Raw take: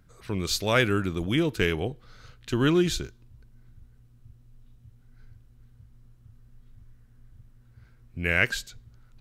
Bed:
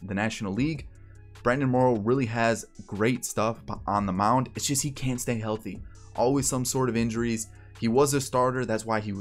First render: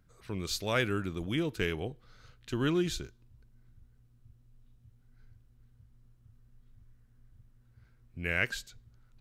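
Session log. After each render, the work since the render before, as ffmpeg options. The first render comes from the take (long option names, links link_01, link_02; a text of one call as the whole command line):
ffmpeg -i in.wav -af "volume=-7dB" out.wav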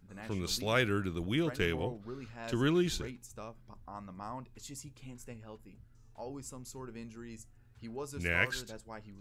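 ffmpeg -i in.wav -i bed.wav -filter_complex "[1:a]volume=-20dB[link_01];[0:a][link_01]amix=inputs=2:normalize=0" out.wav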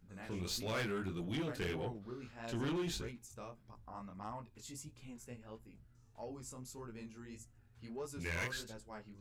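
ffmpeg -i in.wav -af "flanger=delay=17:depth=7.7:speed=1.6,asoftclip=type=tanh:threshold=-33dB" out.wav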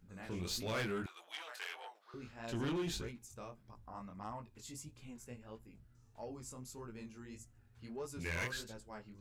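ffmpeg -i in.wav -filter_complex "[0:a]asettb=1/sr,asplit=3[link_01][link_02][link_03];[link_01]atrim=end=1.064[link_04];[link_02]atrim=start=1.06:end=2.14,asetpts=PTS-STARTPTS,afade=type=in:duration=0.004:curve=qsin,afade=type=out:start_time=1.076:duration=0.004:curve=qsin,highpass=frequency=760:width=0.5412,highpass=frequency=760:width=1.3066[link_05];[link_03]atrim=start=2.136[link_06];[link_04][link_05]acrossfade=duration=0.004:curve1=hsin:curve2=qsin[link_07];[link_07][link_06]acrossfade=duration=0.004:curve1=qsin:curve2=hsin" out.wav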